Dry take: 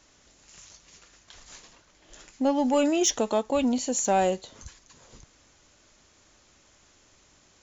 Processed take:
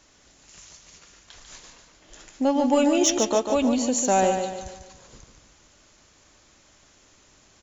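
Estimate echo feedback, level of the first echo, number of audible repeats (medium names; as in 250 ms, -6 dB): 43%, -6.5 dB, 4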